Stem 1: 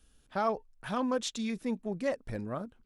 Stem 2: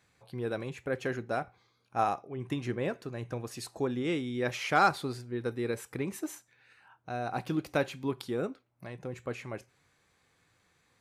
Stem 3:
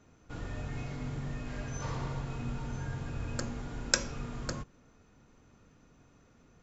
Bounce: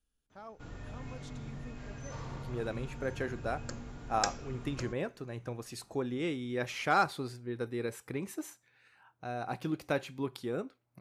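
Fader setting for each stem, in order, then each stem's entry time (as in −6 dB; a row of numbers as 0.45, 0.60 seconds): −19.0, −3.0, −6.0 decibels; 0.00, 2.15, 0.30 seconds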